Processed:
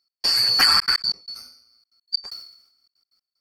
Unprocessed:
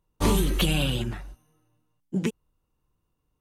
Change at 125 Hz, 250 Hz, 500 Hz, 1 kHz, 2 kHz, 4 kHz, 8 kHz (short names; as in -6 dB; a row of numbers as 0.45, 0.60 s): under -20 dB, -18.5 dB, -13.5 dB, +6.0 dB, +8.5 dB, +14.5 dB, +3.0 dB